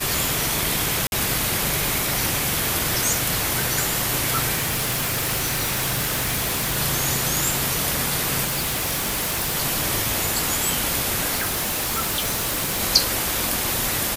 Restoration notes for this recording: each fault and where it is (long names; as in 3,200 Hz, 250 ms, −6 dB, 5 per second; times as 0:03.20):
0:01.07–0:01.12: drop-out 51 ms
0:02.29: click
0:04.54–0:06.78: clipping −19.5 dBFS
0:08.44–0:09.56: clipping −20.5 dBFS
0:11.35–0:12.81: clipping −20 dBFS